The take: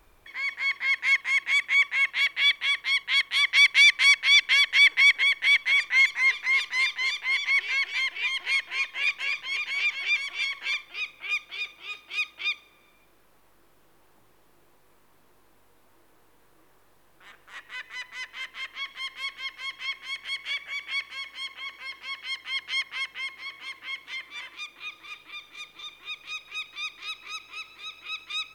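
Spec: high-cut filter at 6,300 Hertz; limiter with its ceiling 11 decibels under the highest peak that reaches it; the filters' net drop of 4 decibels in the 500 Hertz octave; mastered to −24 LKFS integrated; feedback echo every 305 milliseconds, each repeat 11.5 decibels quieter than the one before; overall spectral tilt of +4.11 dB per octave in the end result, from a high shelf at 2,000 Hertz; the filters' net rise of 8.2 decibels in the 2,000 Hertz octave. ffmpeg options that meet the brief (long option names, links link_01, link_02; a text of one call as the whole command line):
ffmpeg -i in.wav -af "lowpass=6300,equalizer=frequency=500:width_type=o:gain=-6,highshelf=frequency=2000:gain=8,equalizer=frequency=2000:width_type=o:gain=4.5,alimiter=limit=-11.5dB:level=0:latency=1,aecho=1:1:305|610|915:0.266|0.0718|0.0194,volume=-4dB" out.wav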